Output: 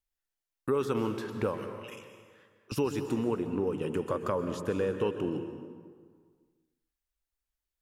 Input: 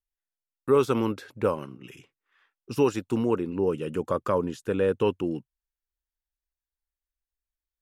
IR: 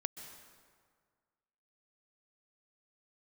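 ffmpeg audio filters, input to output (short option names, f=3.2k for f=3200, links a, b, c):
-filter_complex "[0:a]asettb=1/sr,asplit=3[a][b][c];[a]atrim=end=1.584[d];[b]atrim=start=1.58:end=2.72,asetpts=PTS-STARTPTS,afade=t=in:d=0.004:c=qsin,afade=t=out:st=1.136:d=0.004:c=qsin,highpass=820[e];[c]atrim=start=2.716[f];[d][e]acrossfade=d=0.004:c1=hsin:c2=qsin[g];[g][f]acrossfade=d=0.004:c1=qsin:c2=hsin,acompressor=threshold=-32dB:ratio=2.5[h];[1:a]atrim=start_sample=2205[i];[h][i]afir=irnorm=-1:irlink=0,volume=3dB"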